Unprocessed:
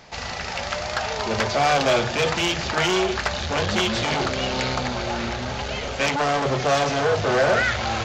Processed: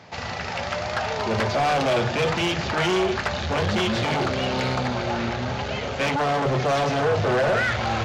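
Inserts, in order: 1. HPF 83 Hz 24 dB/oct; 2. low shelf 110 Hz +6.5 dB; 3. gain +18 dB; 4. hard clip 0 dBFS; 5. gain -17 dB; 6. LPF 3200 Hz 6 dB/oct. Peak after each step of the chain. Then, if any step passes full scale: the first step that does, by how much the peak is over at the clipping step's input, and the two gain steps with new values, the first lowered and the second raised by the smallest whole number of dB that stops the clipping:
-8.0, -8.0, +10.0, 0.0, -17.0, -17.0 dBFS; step 3, 10.0 dB; step 3 +8 dB, step 5 -7 dB

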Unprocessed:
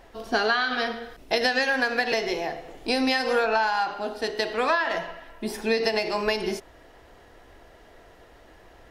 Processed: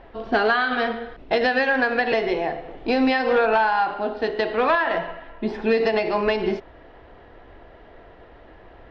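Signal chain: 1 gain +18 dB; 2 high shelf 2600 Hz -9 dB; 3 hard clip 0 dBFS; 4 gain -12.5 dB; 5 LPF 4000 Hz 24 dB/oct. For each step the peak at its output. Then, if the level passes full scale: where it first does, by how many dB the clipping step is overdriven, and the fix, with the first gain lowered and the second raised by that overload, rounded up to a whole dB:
+9.0, +6.5, 0.0, -12.5, -11.5 dBFS; step 1, 6.5 dB; step 1 +11 dB, step 4 -5.5 dB

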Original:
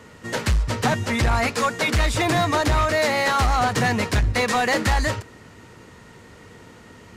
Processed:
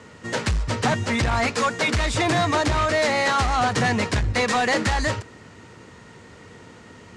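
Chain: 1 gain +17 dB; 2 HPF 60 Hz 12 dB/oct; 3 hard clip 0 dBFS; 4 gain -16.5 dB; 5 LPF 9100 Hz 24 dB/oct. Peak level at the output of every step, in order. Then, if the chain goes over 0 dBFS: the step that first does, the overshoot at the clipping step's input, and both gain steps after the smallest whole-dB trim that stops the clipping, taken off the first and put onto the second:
+2.0, +8.0, 0.0, -16.5, -15.0 dBFS; step 1, 8.0 dB; step 1 +9 dB, step 4 -8.5 dB

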